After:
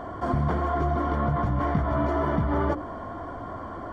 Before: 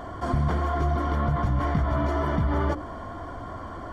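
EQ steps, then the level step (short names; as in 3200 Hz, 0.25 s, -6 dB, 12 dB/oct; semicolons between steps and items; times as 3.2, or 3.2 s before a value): low shelf 110 Hz -8.5 dB; high shelf 2500 Hz -11.5 dB; +3.0 dB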